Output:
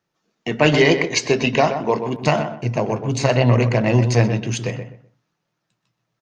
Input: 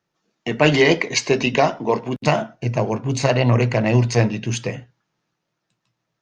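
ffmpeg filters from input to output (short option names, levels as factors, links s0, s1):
-filter_complex "[0:a]asplit=2[s0][s1];[s1]adelay=126,lowpass=f=1900:p=1,volume=0.398,asplit=2[s2][s3];[s3]adelay=126,lowpass=f=1900:p=1,volume=0.25,asplit=2[s4][s5];[s5]adelay=126,lowpass=f=1900:p=1,volume=0.25[s6];[s0][s2][s4][s6]amix=inputs=4:normalize=0"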